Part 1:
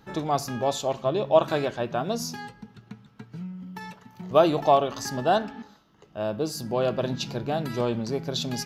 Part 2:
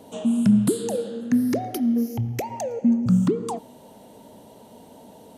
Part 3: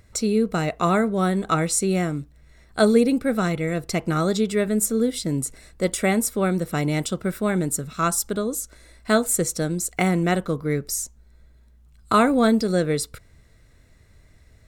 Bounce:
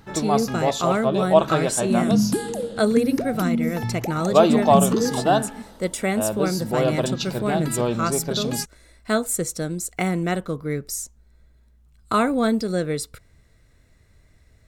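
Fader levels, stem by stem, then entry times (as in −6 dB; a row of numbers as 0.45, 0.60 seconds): +3.0, −2.0, −2.5 decibels; 0.00, 1.65, 0.00 seconds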